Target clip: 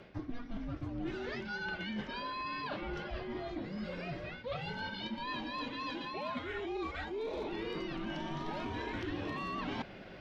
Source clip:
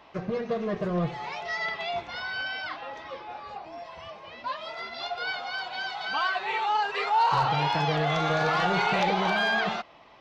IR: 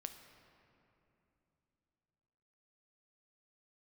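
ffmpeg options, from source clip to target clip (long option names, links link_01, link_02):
-af "areverse,acompressor=threshold=-40dB:ratio=12,areverse,afreqshift=-480,volume=4dB"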